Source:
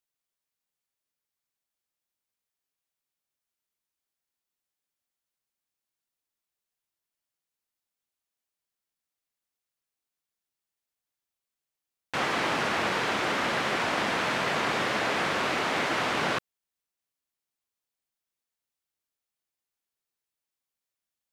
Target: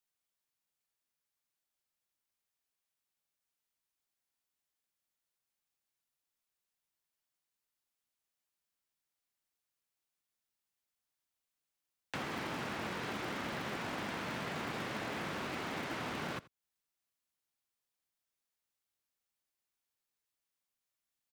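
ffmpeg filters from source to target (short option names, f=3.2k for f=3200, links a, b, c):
-filter_complex "[0:a]acrossover=split=95|380[a][b][c];[a]acompressor=threshold=-56dB:ratio=4[d];[b]acompressor=threshold=-41dB:ratio=4[e];[c]acompressor=threshold=-41dB:ratio=4[f];[d][e][f]amix=inputs=3:normalize=0,acrossover=split=380|1000|6000[g][h][i][j];[g]acrusher=samples=37:mix=1:aa=0.000001[k];[k][h][i][j]amix=inputs=4:normalize=0,aecho=1:1:84:0.0891,volume=-1dB"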